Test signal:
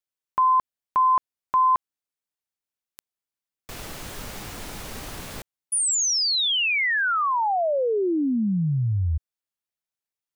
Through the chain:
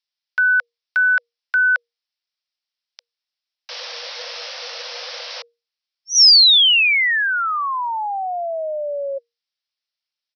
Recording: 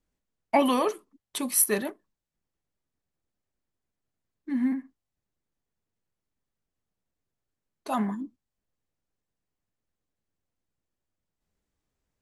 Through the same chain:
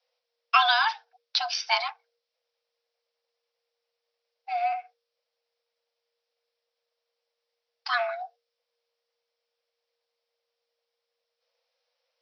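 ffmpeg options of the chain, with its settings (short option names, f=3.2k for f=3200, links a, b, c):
-af "crystalizer=i=9.5:c=0,aresample=11025,aresample=44100,afreqshift=470,volume=-2dB"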